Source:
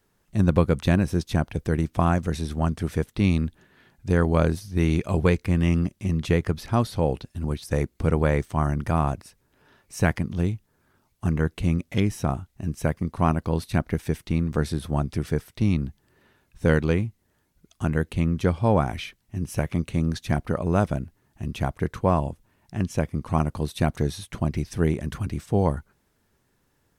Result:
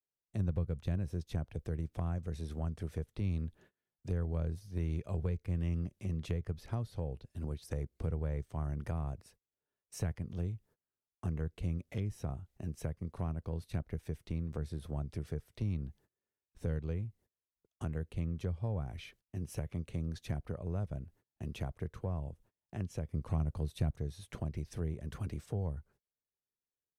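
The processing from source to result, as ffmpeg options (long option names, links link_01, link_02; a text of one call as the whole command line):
ffmpeg -i in.wav -filter_complex "[0:a]asettb=1/sr,asplit=3[link_01][link_02][link_03];[link_01]atrim=end=23.094[link_04];[link_02]atrim=start=23.09:end=23.96,asetpts=PTS-STARTPTS,afade=type=in:duration=0.004:curve=qsin,afade=type=out:start_time=0.866:duration=0.004:curve=qsin,acontrast=35[link_05];[link_03]atrim=start=23.956[link_06];[link_04][link_05]acrossfade=duration=0.004:curve1=hsin:curve2=qsin[link_07];[link_07][link_06]acrossfade=duration=0.004:curve1=qsin:curve2=hsin,agate=range=-29dB:threshold=-50dB:ratio=16:detection=peak,firequalizer=gain_entry='entry(280,0);entry(450,7);entry(930,0)':delay=0.05:min_phase=1,acrossover=split=140[link_08][link_09];[link_09]acompressor=threshold=-33dB:ratio=6[link_10];[link_08][link_10]amix=inputs=2:normalize=0,volume=-9dB" out.wav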